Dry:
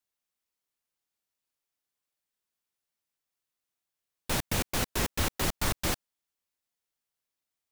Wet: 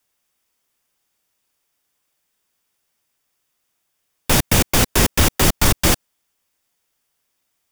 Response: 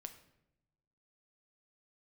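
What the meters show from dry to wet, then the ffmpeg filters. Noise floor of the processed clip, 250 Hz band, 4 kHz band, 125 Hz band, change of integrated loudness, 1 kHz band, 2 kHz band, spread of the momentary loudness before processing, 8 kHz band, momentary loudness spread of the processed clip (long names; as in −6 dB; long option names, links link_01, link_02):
−73 dBFS, +14.5 dB, +13.0 dB, +14.5 dB, +13.5 dB, +12.0 dB, +12.5 dB, 3 LU, +14.5 dB, 3 LU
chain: -filter_complex "[0:a]bandreject=frequency=4100:width=12,acrossover=split=470|3000[link_01][link_02][link_03];[link_02]acompressor=threshold=-35dB:ratio=6[link_04];[link_01][link_04][link_03]amix=inputs=3:normalize=0,asplit=2[link_05][link_06];[link_06]aeval=exprs='0.178*sin(PI/2*1.78*val(0)/0.178)':channel_layout=same,volume=-7dB[link_07];[link_05][link_07]amix=inputs=2:normalize=0,volume=8.5dB"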